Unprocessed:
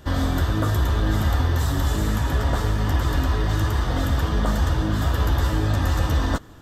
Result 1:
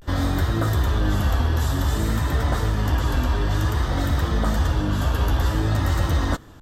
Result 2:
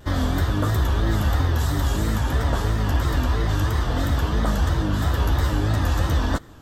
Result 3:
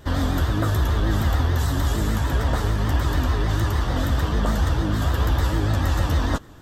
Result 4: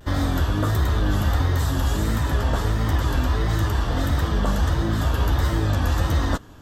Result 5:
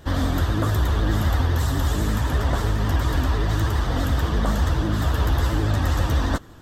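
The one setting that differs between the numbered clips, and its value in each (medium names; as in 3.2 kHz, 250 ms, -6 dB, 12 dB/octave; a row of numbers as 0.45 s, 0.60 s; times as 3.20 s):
vibrato, rate: 0.54 Hz, 3 Hz, 6.7 Hz, 1.5 Hz, 12 Hz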